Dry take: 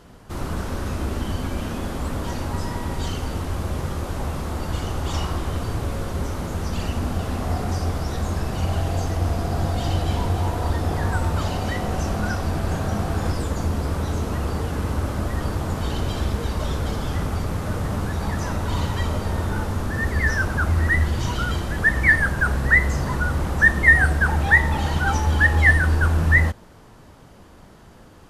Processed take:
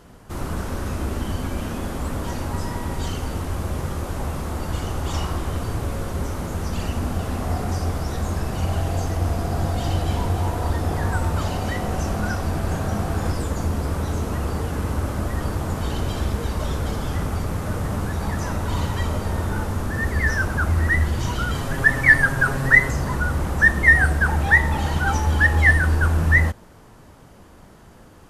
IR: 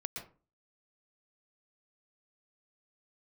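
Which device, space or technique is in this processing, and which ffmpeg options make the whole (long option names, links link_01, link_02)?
exciter from parts: -filter_complex "[0:a]asettb=1/sr,asplit=3[link_01][link_02][link_03];[link_01]atrim=end=21.544[link_04];[link_02]atrim=start=21.54:end=22.91,asetpts=PTS-STARTPTS,afade=type=in:duration=0.004:curve=qsin,afade=type=out:start_time=1.366:duration=0.004:curve=qsin,aecho=1:1:7.4:0.82,atrim=end_sample=60417[link_05];[link_03]atrim=start=22.906[link_06];[link_04][link_05]acrossfade=duration=0.004:curve1=hsin:curve2=qsin[link_07];[link_07][link_06]acrossfade=duration=0.004:curve1=qsin:curve2=hsin,asplit=2[link_08][link_09];[link_09]highpass=2600,asoftclip=type=tanh:threshold=-27.5dB,highpass=4200,volume=-8.5dB[link_10];[link_08][link_10]amix=inputs=2:normalize=0"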